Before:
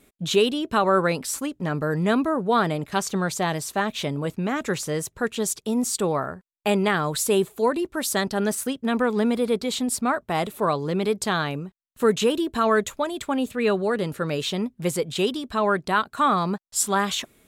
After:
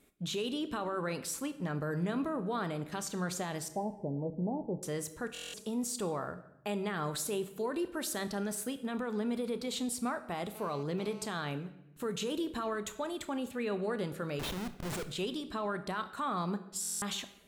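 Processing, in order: 3.68–4.83 s: steep low-pass 930 Hz 96 dB/octave; peak limiter -19 dBFS, peak gain reduction 9.5 dB; 14.39–15.07 s: Schmitt trigger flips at -30 dBFS; reverberation RT60 0.85 s, pre-delay 27 ms, DRR 11 dB; 10.55–11.26 s: mobile phone buzz -43 dBFS; buffer glitch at 5.33/16.81 s, samples 1024, times 8; trim -8.5 dB

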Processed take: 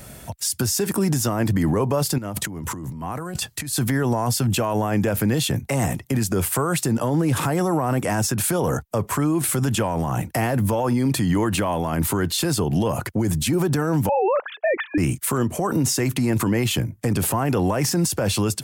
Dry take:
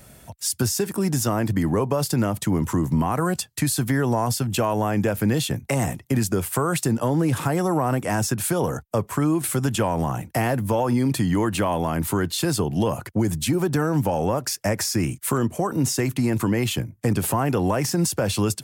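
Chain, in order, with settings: 14.09–14.98 s: formants replaced by sine waves; peak limiter -20.5 dBFS, peak gain reduction 9 dB; 2.18–3.73 s: compressor with a negative ratio -37 dBFS, ratio -1; trim +7 dB

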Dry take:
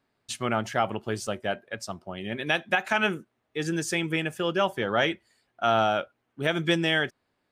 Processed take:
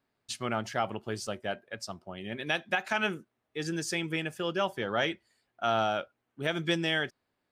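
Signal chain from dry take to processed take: dynamic bell 4.8 kHz, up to +6 dB, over -50 dBFS, Q 2.4; trim -5 dB

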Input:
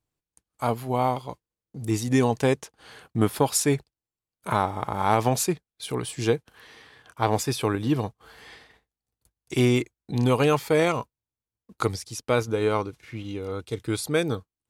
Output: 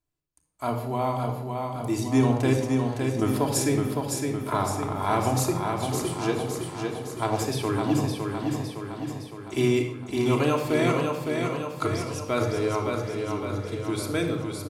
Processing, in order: on a send: feedback delay 561 ms, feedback 57%, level -4.5 dB; on the sum: simulated room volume 3400 m³, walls furnished, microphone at 3 m; trim -5 dB

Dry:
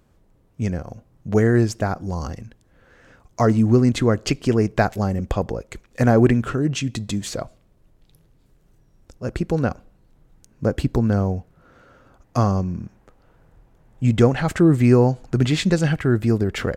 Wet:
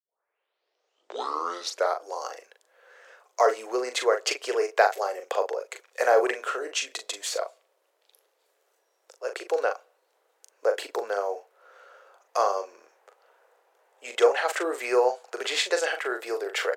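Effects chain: tape start-up on the opening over 2.06 s; steep high-pass 440 Hz 48 dB/octave; doubling 40 ms -7.5 dB

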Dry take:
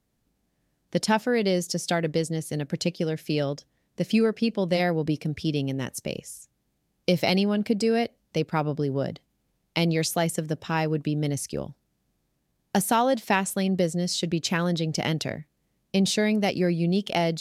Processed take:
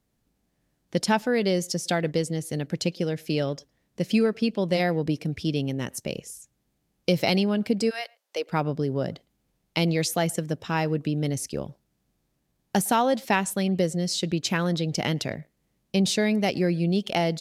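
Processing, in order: 7.89–8.49 s: high-pass 1 kHz -> 360 Hz 24 dB/octave; speakerphone echo 110 ms, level -27 dB

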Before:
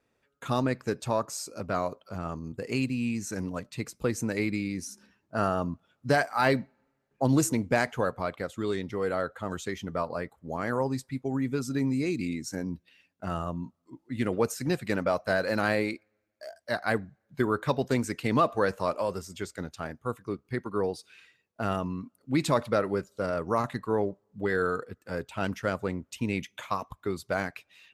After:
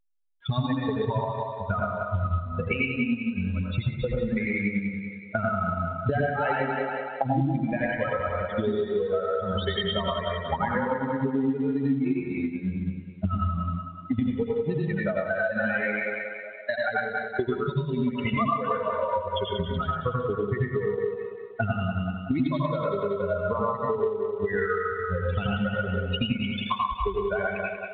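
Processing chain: expander on every frequency bin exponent 3; recorder AGC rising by 33 dB/s; two-band feedback delay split 380 Hz, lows 101 ms, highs 187 ms, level -6 dB; time-frequency box 17.59–18.02 s, 430–2500 Hz -14 dB; reverberation, pre-delay 77 ms, DRR -3.5 dB; transient shaper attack +4 dB, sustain -2 dB; compression 4:1, threshold -29 dBFS, peak gain reduction 13 dB; trim +5.5 dB; A-law 64 kbps 8 kHz

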